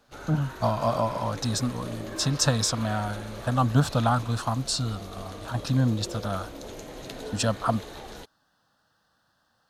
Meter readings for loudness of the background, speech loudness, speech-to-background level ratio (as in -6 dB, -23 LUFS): -40.5 LUFS, -27.0 LUFS, 13.5 dB